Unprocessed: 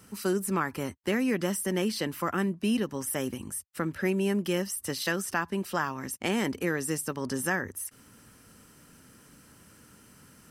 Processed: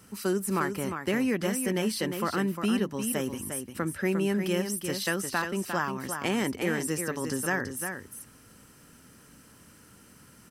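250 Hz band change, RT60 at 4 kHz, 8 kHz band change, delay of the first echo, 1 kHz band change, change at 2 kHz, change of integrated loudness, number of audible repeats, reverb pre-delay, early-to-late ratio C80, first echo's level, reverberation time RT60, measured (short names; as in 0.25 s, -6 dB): +1.0 dB, none, +1.0 dB, 0.353 s, +1.0 dB, +1.0 dB, +0.5 dB, 1, none, none, -7.0 dB, none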